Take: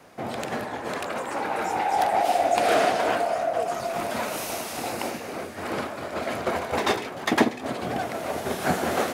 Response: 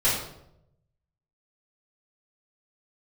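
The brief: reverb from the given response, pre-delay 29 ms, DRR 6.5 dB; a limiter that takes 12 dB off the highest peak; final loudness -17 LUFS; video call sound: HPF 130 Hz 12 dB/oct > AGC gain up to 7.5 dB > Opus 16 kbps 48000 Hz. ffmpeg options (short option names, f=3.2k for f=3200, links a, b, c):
-filter_complex "[0:a]alimiter=limit=-18.5dB:level=0:latency=1,asplit=2[a][b];[1:a]atrim=start_sample=2205,adelay=29[c];[b][c]afir=irnorm=-1:irlink=0,volume=-20.5dB[d];[a][d]amix=inputs=2:normalize=0,highpass=130,dynaudnorm=m=7.5dB,volume=11.5dB" -ar 48000 -c:a libopus -b:a 16k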